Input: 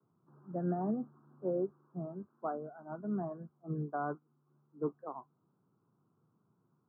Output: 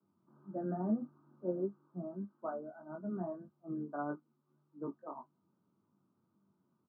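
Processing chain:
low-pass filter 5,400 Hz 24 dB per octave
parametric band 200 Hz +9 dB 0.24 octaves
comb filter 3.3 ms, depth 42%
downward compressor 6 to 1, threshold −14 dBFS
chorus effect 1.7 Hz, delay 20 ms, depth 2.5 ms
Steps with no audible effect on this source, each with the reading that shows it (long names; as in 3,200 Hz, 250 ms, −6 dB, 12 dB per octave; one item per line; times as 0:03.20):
low-pass filter 5,400 Hz: nothing at its input above 1,500 Hz
downward compressor, threshold −14 dBFS: peak of its input −20.0 dBFS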